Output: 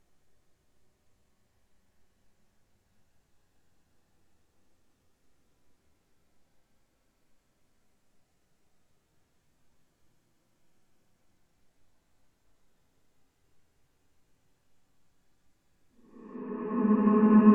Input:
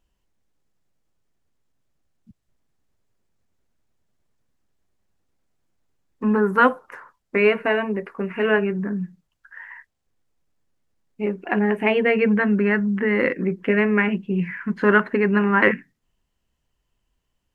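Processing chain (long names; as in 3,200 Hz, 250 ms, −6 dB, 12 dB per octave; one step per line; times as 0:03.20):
extreme stretch with random phases 13×, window 0.25 s, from 0:04.88
treble cut that deepens with the level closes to 2,500 Hz, closed at −41.5 dBFS
level +6 dB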